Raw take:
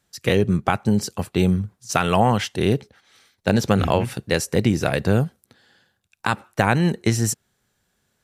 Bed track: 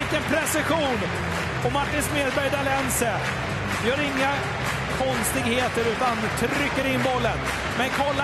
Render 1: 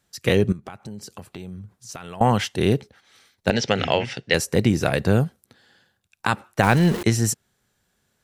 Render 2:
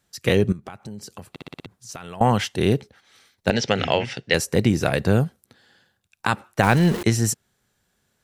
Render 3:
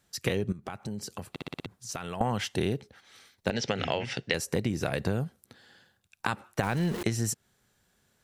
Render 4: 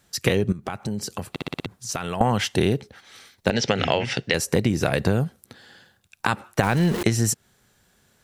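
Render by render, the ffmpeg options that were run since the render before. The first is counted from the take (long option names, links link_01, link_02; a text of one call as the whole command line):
ffmpeg -i in.wav -filter_complex "[0:a]asettb=1/sr,asplit=3[link_01][link_02][link_03];[link_01]atrim=end=0.524[link_04];[link_02]atrim=start=0.52:end=2.21,asetpts=PTS-STARTPTS,afade=type=in:duration=0.004:curve=qsin,afade=type=out:start_time=1.686:duration=0.004:curve=qsin,acompressor=threshold=-36dB:ratio=4:attack=3.2:release=140:knee=1:detection=peak[link_05];[link_03]atrim=start=2.206[link_06];[link_04][link_05]acrossfade=duration=0.004:curve1=hsin:curve2=qsin[link_07];[link_07][link_06]acrossfade=duration=0.004:curve1=qsin:curve2=hsin,asettb=1/sr,asplit=3[link_08][link_09][link_10];[link_08]atrim=end=3.504[link_11];[link_09]atrim=start=3.5:end=4.34,asetpts=PTS-STARTPTS,afade=type=in:duration=0.004:curve=qsin,afade=type=out:start_time=0.836:duration=0.004:curve=qsin,highpass=160,equalizer=frequency=200:width_type=q:width=4:gain=-7,equalizer=frequency=320:width_type=q:width=4:gain=-6,equalizer=frequency=1100:width_type=q:width=4:gain=-7,equalizer=frequency=2000:width_type=q:width=4:gain=8,equalizer=frequency=3000:width_type=q:width=4:gain=8,equalizer=frequency=5300:width_type=q:width=4:gain=7,lowpass=frequency=6400:width=0.5412,lowpass=frequency=6400:width=1.3066[link_12];[link_10]atrim=start=4.336[link_13];[link_11][link_12]acrossfade=duration=0.004:curve1=hsin:curve2=qsin[link_14];[link_14][link_13]acrossfade=duration=0.004:curve1=qsin:curve2=hsin,asettb=1/sr,asplit=3[link_15][link_16][link_17];[link_15]atrim=end=6.634[link_18];[link_16]atrim=start=6.63:end=7.03,asetpts=PTS-STARTPTS,afade=type=in:duration=0.004:curve=qsin,afade=type=out:start_time=0.396:duration=0.004:curve=qsin,aeval=exprs='val(0)+0.5*0.0631*sgn(val(0))':channel_layout=same[link_19];[link_17]atrim=start=7.026[link_20];[link_18][link_19]acrossfade=duration=0.004:curve1=hsin:curve2=qsin[link_21];[link_21][link_20]acrossfade=duration=0.004:curve1=qsin:curve2=hsin" out.wav
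ffmpeg -i in.wav -filter_complex "[0:a]asplit=7[link_01][link_02][link_03][link_04][link_05][link_06][link_07];[link_01]atrim=end=1.362[link_08];[link_02]atrim=start=1.298:end=1.362[link_09];[link_03]atrim=start=1.298:end=1.362[link_10];[link_04]atrim=start=1.298:end=1.362[link_11];[link_05]atrim=start=1.298:end=1.362[link_12];[link_06]atrim=start=1.298:end=1.362[link_13];[link_07]atrim=start=1.658[link_14];[link_08][link_09]acrossfade=duration=0.004:curve1=hsin:curve2=hsin[link_15];[link_15][link_10]acrossfade=duration=0.004:curve1=hsin:curve2=hsin[link_16];[link_16][link_11]acrossfade=duration=0.004:curve1=hsin:curve2=hsin[link_17];[link_17][link_12]acrossfade=duration=0.004:curve1=hsin:curve2=hsin[link_18];[link_18][link_13]acrossfade=duration=0.004:curve1=hsin:curve2=hsin[link_19];[link_19][link_14]acrossfade=duration=0.004:curve1=hsin:curve2=hsin" out.wav
ffmpeg -i in.wav -af "alimiter=limit=-6dB:level=0:latency=1:release=429,acompressor=threshold=-25dB:ratio=6" out.wav
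ffmpeg -i in.wav -af "volume=8dB,alimiter=limit=-3dB:level=0:latency=1" out.wav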